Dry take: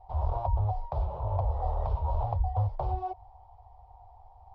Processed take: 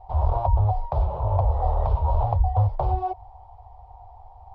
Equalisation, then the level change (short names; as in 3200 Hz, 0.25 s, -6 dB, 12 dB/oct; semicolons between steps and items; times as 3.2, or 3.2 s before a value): air absorption 60 m; +7.5 dB